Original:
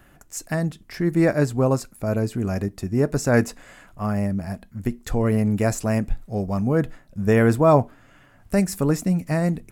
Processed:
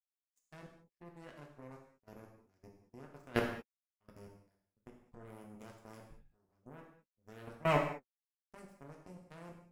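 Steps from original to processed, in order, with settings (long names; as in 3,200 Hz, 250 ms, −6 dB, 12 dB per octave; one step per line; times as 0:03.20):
power curve on the samples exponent 3
output level in coarse steps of 24 dB
reverb whose tail is shaped and stops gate 240 ms falling, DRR 0 dB
level −5.5 dB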